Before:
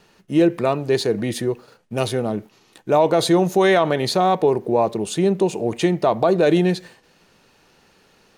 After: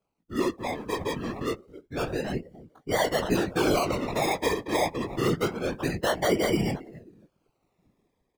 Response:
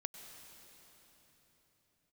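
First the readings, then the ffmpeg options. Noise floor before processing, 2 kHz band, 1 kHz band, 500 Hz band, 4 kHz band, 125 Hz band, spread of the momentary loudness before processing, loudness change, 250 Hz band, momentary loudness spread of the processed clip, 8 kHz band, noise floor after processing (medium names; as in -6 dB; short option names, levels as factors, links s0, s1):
-57 dBFS, -3.5 dB, -8.5 dB, -10.0 dB, -5.5 dB, -8.0 dB, 10 LU, -9.0 dB, -9.0 dB, 10 LU, -4.0 dB, -76 dBFS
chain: -filter_complex "[0:a]asplit=2[s0][s1];[s1]adelay=268,lowpass=f=2100:p=1,volume=0.0891,asplit=2[s2][s3];[s3]adelay=268,lowpass=f=2100:p=1,volume=0.28[s4];[s2][s4]amix=inputs=2:normalize=0[s5];[s0][s5]amix=inputs=2:normalize=0,acrusher=samples=24:mix=1:aa=0.000001:lfo=1:lforange=14.4:lforate=0.27,dynaudnorm=f=120:g=17:m=5.01,flanger=delay=18:depth=3:speed=1.2,asplit=2[s6][s7];[s7]acompressor=threshold=0.0355:ratio=6,volume=1.26[s8];[s6][s8]amix=inputs=2:normalize=0,afftdn=nr=18:nf=-29,afftfilt=real='hypot(re,im)*cos(2*PI*random(0))':imag='hypot(re,im)*sin(2*PI*random(1))':win_size=512:overlap=0.75,volume=0.473"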